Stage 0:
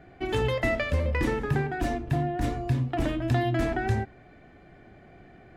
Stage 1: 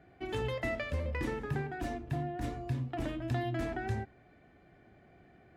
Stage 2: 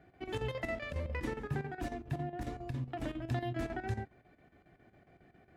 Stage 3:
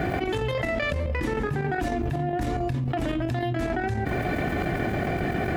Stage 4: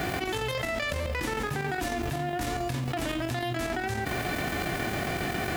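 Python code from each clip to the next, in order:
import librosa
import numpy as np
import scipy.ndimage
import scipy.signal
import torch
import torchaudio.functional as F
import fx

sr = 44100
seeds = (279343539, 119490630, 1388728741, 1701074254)

y1 = scipy.signal.sosfilt(scipy.signal.butter(2, 41.0, 'highpass', fs=sr, output='sos'), x)
y1 = F.gain(torch.from_numpy(y1), -8.5).numpy()
y2 = fx.chopper(y1, sr, hz=7.3, depth_pct=65, duty_pct=75)
y2 = F.gain(torch.from_numpy(y2), -1.5).numpy()
y3 = fx.env_flatten(y2, sr, amount_pct=100)
y3 = F.gain(torch.from_numpy(y3), 4.5).numpy()
y4 = fx.envelope_flatten(y3, sr, power=0.6)
y4 = F.gain(torch.from_numpy(y4), -4.0).numpy()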